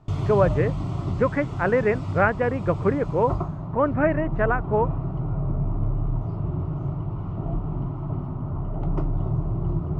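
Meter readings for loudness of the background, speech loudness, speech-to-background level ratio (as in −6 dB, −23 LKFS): −28.5 LKFS, −24.0 LKFS, 4.5 dB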